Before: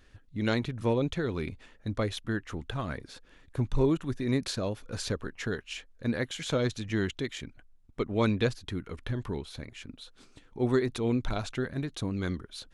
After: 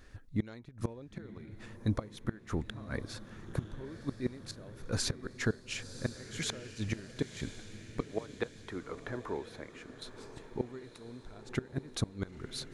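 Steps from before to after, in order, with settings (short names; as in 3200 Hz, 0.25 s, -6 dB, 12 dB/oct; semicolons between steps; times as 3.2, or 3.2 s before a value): 8.02–10.02 three-band isolator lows -17 dB, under 360 Hz, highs -13 dB, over 2000 Hz; flipped gate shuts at -23 dBFS, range -24 dB; bell 3000 Hz -6.5 dB 0.56 oct; diffused feedback echo 1.01 s, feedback 49%, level -12 dB; gain +3.5 dB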